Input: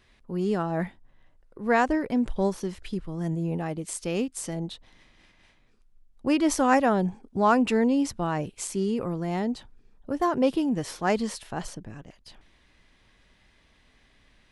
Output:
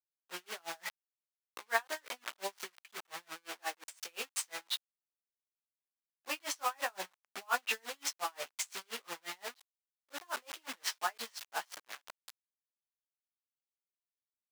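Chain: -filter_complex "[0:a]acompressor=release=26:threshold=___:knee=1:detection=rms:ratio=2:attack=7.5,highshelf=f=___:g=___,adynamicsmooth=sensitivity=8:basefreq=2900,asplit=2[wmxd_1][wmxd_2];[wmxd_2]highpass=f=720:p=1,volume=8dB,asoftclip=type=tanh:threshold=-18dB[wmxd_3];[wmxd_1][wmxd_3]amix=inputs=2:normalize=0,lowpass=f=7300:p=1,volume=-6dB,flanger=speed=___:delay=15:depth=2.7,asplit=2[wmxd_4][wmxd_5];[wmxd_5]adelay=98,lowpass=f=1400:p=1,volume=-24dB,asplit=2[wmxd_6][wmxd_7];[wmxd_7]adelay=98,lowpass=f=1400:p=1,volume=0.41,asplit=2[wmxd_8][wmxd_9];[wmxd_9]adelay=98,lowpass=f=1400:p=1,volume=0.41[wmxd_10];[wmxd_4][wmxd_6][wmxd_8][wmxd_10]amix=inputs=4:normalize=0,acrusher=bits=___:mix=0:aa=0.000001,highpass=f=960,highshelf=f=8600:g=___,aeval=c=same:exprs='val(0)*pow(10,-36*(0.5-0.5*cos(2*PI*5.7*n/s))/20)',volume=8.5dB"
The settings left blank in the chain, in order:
-36dB, 3900, 5, 0.83, 6, -2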